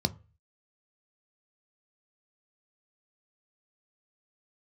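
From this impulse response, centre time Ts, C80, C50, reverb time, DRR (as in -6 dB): 3 ms, 28.0 dB, 22.5 dB, 0.35 s, 10.0 dB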